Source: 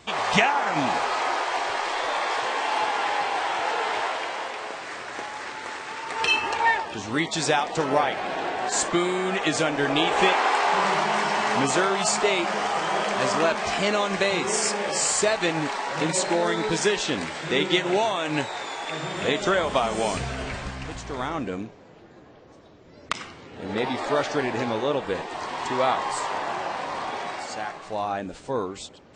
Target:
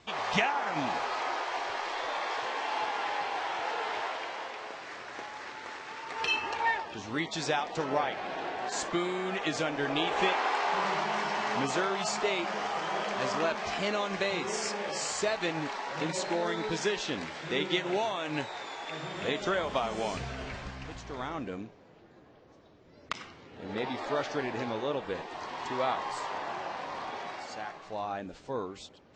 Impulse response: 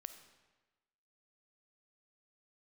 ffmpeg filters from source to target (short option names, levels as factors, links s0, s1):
-af "lowpass=f=6700:w=0.5412,lowpass=f=6700:w=1.3066,volume=0.422"